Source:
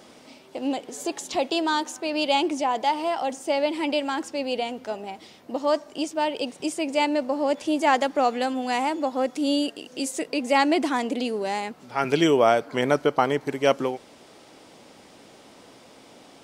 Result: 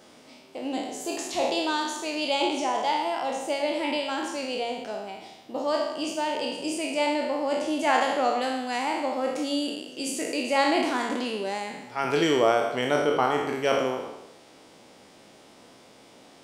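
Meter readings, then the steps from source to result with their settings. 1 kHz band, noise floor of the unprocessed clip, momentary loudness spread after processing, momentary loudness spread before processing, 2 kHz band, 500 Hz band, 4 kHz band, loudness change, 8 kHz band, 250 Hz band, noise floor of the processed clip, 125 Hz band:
-2.0 dB, -51 dBFS, 10 LU, 10 LU, -0.5 dB, -2.0 dB, -0.5 dB, -2.0 dB, 0.0 dB, -3.5 dB, -53 dBFS, -4.0 dB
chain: spectral sustain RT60 1.01 s; de-hum 46.33 Hz, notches 29; trim -4.5 dB

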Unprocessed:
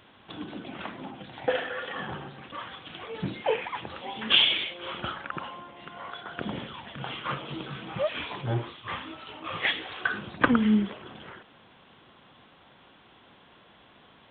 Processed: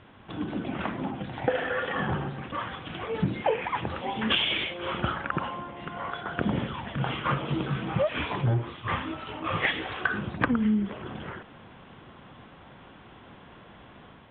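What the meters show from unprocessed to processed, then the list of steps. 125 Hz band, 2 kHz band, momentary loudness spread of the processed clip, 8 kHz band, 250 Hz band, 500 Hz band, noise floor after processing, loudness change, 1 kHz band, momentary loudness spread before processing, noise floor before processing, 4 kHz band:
+6.5 dB, +0.5 dB, 17 LU, no reading, +1.0 dB, +2.0 dB, -51 dBFS, 0.0 dB, +3.5 dB, 19 LU, -57 dBFS, -4.5 dB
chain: level rider gain up to 3.5 dB; low-pass 2.6 kHz 12 dB/octave; bass shelf 180 Hz +9 dB; compression 12:1, threshold -23 dBFS, peak gain reduction 11.5 dB; trim +2 dB

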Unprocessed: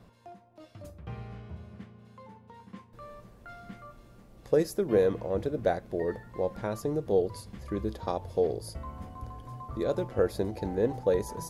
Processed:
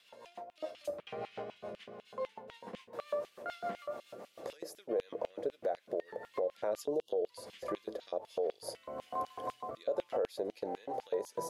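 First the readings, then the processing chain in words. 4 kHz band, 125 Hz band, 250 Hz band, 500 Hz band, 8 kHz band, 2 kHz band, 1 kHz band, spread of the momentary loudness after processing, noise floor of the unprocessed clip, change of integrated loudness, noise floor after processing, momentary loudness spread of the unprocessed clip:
-2.0 dB, -22.5 dB, -12.5 dB, -7.0 dB, -5.5 dB, -6.5 dB, -2.0 dB, 12 LU, -56 dBFS, -9.5 dB, -68 dBFS, 21 LU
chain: time-frequency box 6.84–7.26 s, 1.1–2.7 kHz -26 dB; compression 12:1, threshold -39 dBFS, peak gain reduction 20 dB; tilt shelf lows +5.5 dB, about 820 Hz; rotary cabinet horn 7 Hz, later 1.2 Hz, at 7.01 s; LFO high-pass square 4 Hz 590–2900 Hz; peak limiter -36 dBFS, peak gain reduction 11 dB; trim +11.5 dB

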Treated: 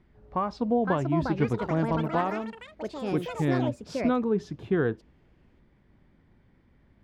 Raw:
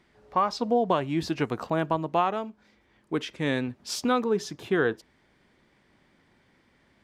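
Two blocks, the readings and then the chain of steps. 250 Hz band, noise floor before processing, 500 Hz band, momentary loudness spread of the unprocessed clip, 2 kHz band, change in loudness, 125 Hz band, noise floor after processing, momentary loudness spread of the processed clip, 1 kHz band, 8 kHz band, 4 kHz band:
+2.0 dB, -65 dBFS, -1.0 dB, 8 LU, -3.0 dB, -0.5 dB, +5.5 dB, -63 dBFS, 9 LU, -3.5 dB, under -10 dB, -9.0 dB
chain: RIAA curve playback; ever faster or slower copies 618 ms, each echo +6 st, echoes 3, each echo -6 dB; trim -5 dB

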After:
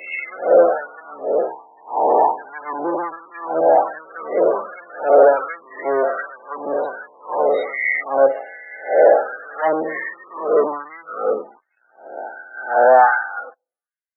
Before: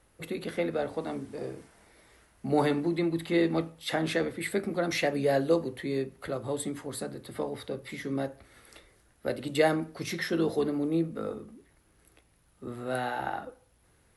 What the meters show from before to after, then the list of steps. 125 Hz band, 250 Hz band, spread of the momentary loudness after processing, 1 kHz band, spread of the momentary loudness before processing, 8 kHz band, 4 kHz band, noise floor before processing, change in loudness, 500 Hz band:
under -15 dB, -1.5 dB, 19 LU, +18.5 dB, 12 LU, under -35 dB, under -10 dB, -65 dBFS, +12.5 dB, +14.0 dB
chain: reverse spectral sustain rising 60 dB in 2.47 s; high-pass 140 Hz 24 dB/octave; low-pass that closes with the level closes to 650 Hz, closed at -22 dBFS; waveshaping leveller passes 5; in parallel at -9 dB: one-sided clip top -18.5 dBFS, bottom -14 dBFS; on the sum: loudest bins only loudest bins 32; LFO high-pass sine 1.3 Hz 560–1900 Hz; three bands expanded up and down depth 70%; trim -3.5 dB

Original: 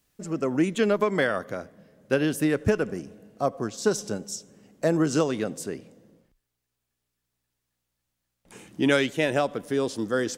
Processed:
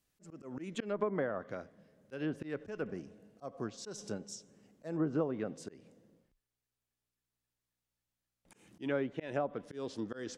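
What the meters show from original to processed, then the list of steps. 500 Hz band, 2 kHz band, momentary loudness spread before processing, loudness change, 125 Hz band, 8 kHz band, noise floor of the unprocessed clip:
-12.5 dB, -16.5 dB, 13 LU, -13.0 dB, -12.0 dB, -15.5 dB, -82 dBFS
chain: slow attack 189 ms; low-pass that closes with the level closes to 1.1 kHz, closed at -20.5 dBFS; trim -9 dB

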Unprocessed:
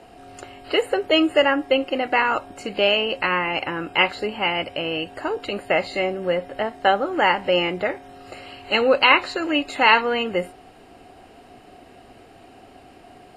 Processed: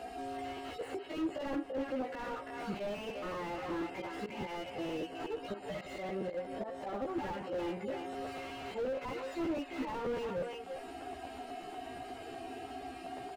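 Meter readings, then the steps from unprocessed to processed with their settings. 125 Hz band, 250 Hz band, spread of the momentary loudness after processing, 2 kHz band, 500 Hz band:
-10.5 dB, -12.0 dB, 8 LU, -24.0 dB, -15.5 dB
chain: harmonic-percussive separation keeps harmonic; bass shelf 210 Hz -4 dB; slow attack 198 ms; compression 2.5:1, threshold -44 dBFS, peak gain reduction 19.5 dB; doubling 15 ms -2.5 dB; speakerphone echo 340 ms, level -9 dB; crackling interface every 0.12 s, samples 512, repeat, from 0.56 s; slew-rate limiter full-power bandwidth 8.1 Hz; trim +3 dB

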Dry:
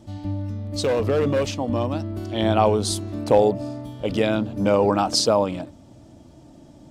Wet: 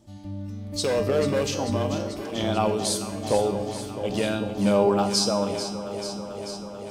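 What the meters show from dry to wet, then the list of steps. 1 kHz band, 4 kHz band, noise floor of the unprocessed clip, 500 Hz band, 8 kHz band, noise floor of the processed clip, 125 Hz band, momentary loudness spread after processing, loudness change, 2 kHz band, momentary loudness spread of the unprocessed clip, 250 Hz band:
-4.0 dB, -1.0 dB, -48 dBFS, -3.5 dB, +0.5 dB, -38 dBFS, -4.0 dB, 13 LU, -3.5 dB, -2.0 dB, 11 LU, -2.0 dB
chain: treble shelf 4.6 kHz +7.5 dB; level rider gain up to 7 dB; feedback comb 200 Hz, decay 0.75 s, harmonics all, mix 80%; echo whose repeats swap between lows and highs 220 ms, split 930 Hz, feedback 87%, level -9.5 dB; trim +3 dB

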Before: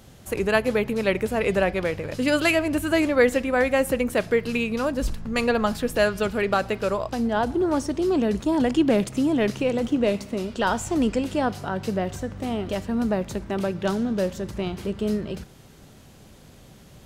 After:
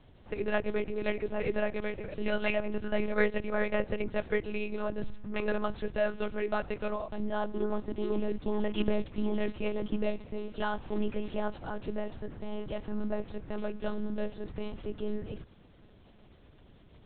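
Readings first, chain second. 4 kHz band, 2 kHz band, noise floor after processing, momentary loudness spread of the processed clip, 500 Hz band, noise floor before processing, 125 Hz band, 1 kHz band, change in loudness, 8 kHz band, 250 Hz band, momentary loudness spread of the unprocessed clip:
-12.5 dB, -10.0 dB, -57 dBFS, 8 LU, -9.0 dB, -49 dBFS, -9.5 dB, -11.0 dB, -10.5 dB, under -40 dB, -11.5 dB, 8 LU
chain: monotone LPC vocoder at 8 kHz 210 Hz; peaking EQ 1.9 kHz -2.5 dB 2.5 oct; trim -7.5 dB

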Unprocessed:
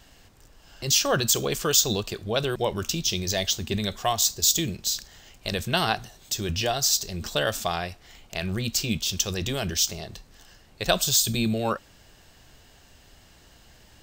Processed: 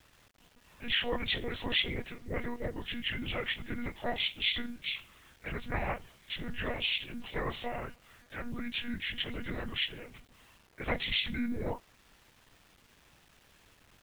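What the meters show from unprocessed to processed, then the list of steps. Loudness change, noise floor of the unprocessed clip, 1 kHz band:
-10.0 dB, -55 dBFS, -11.0 dB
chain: frequency axis rescaled in octaves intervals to 79%; monotone LPC vocoder at 8 kHz 240 Hz; bit crusher 9-bit; trim -7.5 dB

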